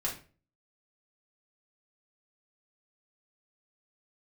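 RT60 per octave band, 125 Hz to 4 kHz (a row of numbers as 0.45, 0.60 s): 0.55, 0.50, 0.40, 0.35, 0.35, 0.30 s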